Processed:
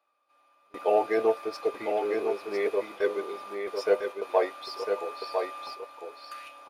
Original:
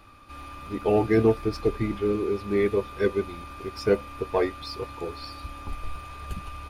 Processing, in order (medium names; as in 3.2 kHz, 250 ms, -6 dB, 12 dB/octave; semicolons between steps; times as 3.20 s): high-pass sweep 600 Hz -> 3.6 kHz, 6.10–6.60 s; gate with hold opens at -27 dBFS; delay 1002 ms -5.5 dB; trim -3 dB